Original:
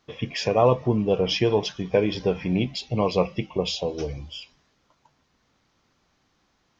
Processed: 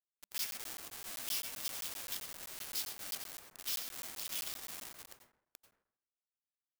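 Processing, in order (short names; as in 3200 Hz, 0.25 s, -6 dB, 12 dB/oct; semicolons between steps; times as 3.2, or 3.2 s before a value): regenerating reverse delay 0.397 s, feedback 55%, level -12.5 dB; auto swell 0.445 s; echo 0.283 s -22.5 dB; added noise blue -61 dBFS; high shelf 5200 Hz +7 dB; Schmitt trigger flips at -38 dBFS; differentiator; plate-style reverb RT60 0.68 s, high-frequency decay 0.3×, pre-delay 80 ms, DRR 3 dB; crackling interface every 0.13 s, samples 512, zero, from 0.38; polarity switched at an audio rate 200 Hz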